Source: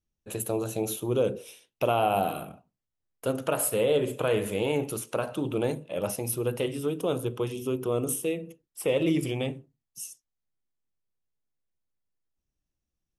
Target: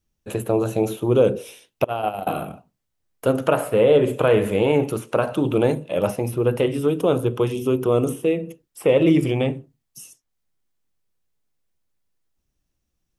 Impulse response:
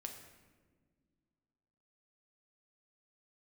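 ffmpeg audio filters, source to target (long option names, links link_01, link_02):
-filter_complex "[0:a]asettb=1/sr,asplit=3[link_01][link_02][link_03];[link_01]atrim=end=1.844[link_04];[link_02]atrim=start=1.84:end=2.27,asetpts=PTS-STARTPTS,afade=type=in:duration=0.004:curve=qsin,afade=type=out:start_time=0.426:duration=0.004:curve=qsin,agate=range=-25dB:threshold=-21dB:ratio=16:detection=peak[link_05];[link_03]atrim=start=2.266[link_06];[link_04][link_05]acrossfade=duration=0.004:curve1=hsin:curve2=qsin[link_07];[link_07][link_06]acrossfade=duration=0.004:curve1=qsin:curve2=hsin,acrossover=split=2600[link_08][link_09];[link_09]acompressor=threshold=-51dB:ratio=4[link_10];[link_08][link_10]amix=inputs=2:normalize=0,volume=9dB"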